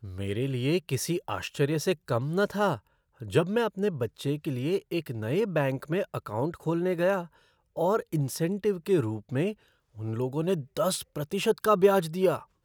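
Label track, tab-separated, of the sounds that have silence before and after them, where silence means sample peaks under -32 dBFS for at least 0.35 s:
3.220000	7.220000	sound
7.780000	9.520000	sound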